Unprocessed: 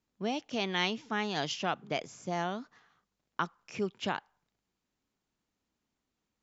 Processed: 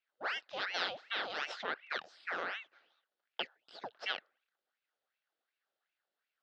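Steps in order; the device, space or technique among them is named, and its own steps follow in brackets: 3.42–3.84 steep high-pass 810 Hz 96 dB/oct; voice changer toy (ring modulator with a swept carrier 1400 Hz, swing 80%, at 2.7 Hz; speaker cabinet 510–4400 Hz, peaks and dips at 1000 Hz -8 dB, 1500 Hz +4 dB, 2300 Hz -6 dB)

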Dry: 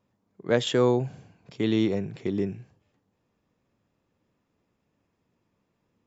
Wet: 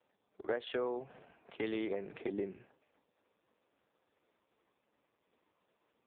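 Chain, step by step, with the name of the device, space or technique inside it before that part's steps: 1.57–2.19 dynamic EQ 250 Hz, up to -6 dB, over -37 dBFS, Q 1.5; voicemail (BPF 420–2900 Hz; compressor 8:1, threshold -38 dBFS, peak gain reduction 18.5 dB; gain +5.5 dB; AMR-NB 4.75 kbps 8000 Hz)

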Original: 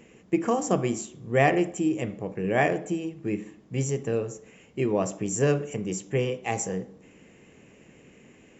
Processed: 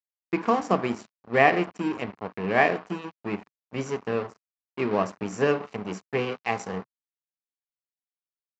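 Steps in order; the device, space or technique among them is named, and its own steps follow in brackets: blown loudspeaker (crossover distortion -36 dBFS; speaker cabinet 140–4800 Hz, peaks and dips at 140 Hz -10 dB, 330 Hz -7 dB, 530 Hz -5 dB, 1100 Hz +4 dB, 3400 Hz -5 dB); gain +5 dB

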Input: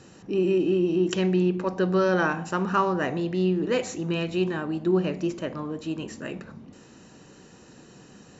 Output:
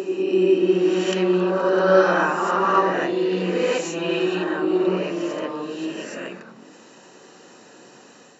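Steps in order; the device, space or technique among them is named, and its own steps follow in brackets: ghost voice (reverse; reverb RT60 2.0 s, pre-delay 17 ms, DRR -5.5 dB; reverse; HPF 340 Hz 12 dB/oct)

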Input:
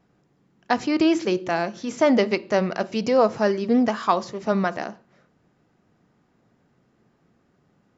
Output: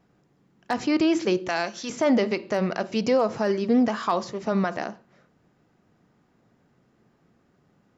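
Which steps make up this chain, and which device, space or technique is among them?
1.48–1.9 tilt +3 dB/oct; clipper into limiter (hard clip -7.5 dBFS, distortion -35 dB; limiter -13 dBFS, peak gain reduction 5.5 dB)

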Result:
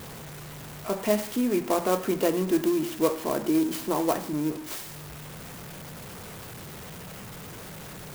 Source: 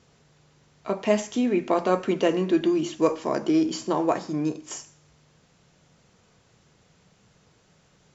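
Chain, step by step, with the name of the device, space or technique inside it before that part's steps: early CD player with a faulty converter (zero-crossing step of -32.5 dBFS; clock jitter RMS 0.057 ms); gain -3 dB

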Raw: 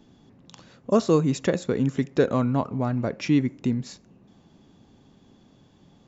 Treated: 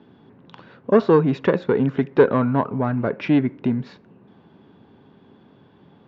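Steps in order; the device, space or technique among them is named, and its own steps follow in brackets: guitar amplifier (tube stage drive 12 dB, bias 0.3; tone controls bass 0 dB, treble -7 dB; speaker cabinet 94–3900 Hz, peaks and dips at 420 Hz +6 dB, 960 Hz +5 dB, 1500 Hz +6 dB); gain +4.5 dB

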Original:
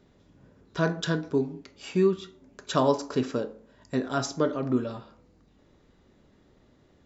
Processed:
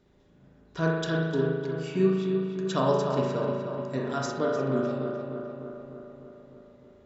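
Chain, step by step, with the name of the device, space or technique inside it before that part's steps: dub delay into a spring reverb (darkening echo 0.302 s, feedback 65%, low-pass 3100 Hz, level -6.5 dB; spring tank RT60 1.2 s, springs 37 ms, chirp 30 ms, DRR -0.5 dB); gain -4.5 dB

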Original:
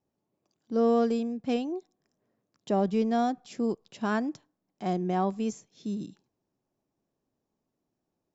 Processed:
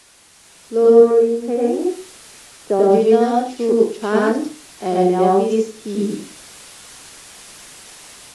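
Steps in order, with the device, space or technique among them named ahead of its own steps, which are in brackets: 0.9–2.79 elliptic band-pass 140–2000 Hz; filmed off a television (BPF 240–6000 Hz; bell 430 Hz +9 dB 0.57 oct; reverb RT60 0.35 s, pre-delay 89 ms, DRR -3 dB; white noise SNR 25 dB; AGC gain up to 9.5 dB; AAC 48 kbps 24000 Hz)

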